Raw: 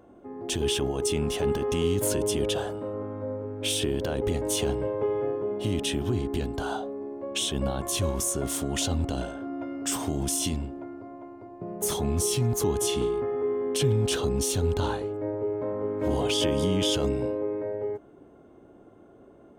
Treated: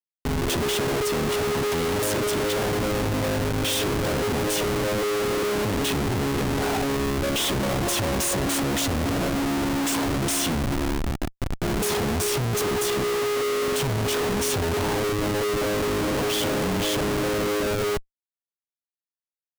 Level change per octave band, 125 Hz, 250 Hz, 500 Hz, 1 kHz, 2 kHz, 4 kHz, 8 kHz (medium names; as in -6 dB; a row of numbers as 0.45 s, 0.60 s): +2.5 dB, +4.0 dB, +2.5 dB, +8.0 dB, +11.0 dB, +3.5 dB, +2.0 dB